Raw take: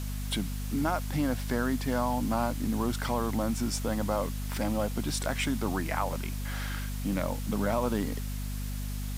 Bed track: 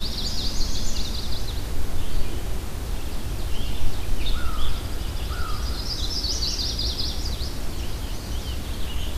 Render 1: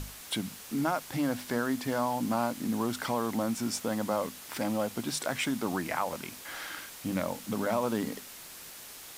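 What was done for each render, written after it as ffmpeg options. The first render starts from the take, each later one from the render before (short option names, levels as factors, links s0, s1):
-af "bandreject=f=50:t=h:w=6,bandreject=f=100:t=h:w=6,bandreject=f=150:t=h:w=6,bandreject=f=200:t=h:w=6,bandreject=f=250:t=h:w=6"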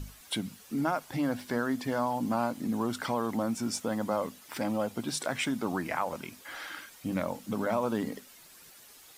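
-af "afftdn=nr=10:nf=-47"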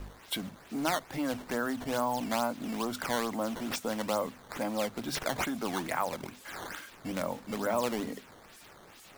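-filter_complex "[0:a]acrossover=split=300[s0][s1];[s0]asoftclip=type=hard:threshold=0.0106[s2];[s2][s1]amix=inputs=2:normalize=0,acrusher=samples=10:mix=1:aa=0.000001:lfo=1:lforange=16:lforate=2.3"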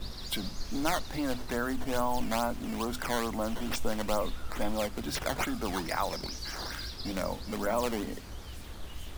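-filter_complex "[1:a]volume=0.188[s0];[0:a][s0]amix=inputs=2:normalize=0"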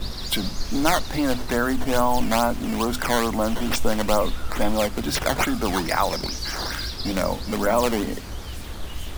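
-af "volume=2.99"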